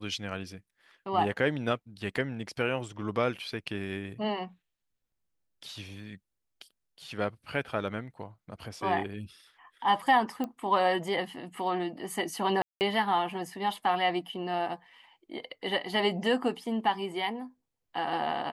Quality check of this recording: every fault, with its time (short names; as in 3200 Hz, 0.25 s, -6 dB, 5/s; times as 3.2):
10.44 pop -21 dBFS
12.62–12.81 gap 0.189 s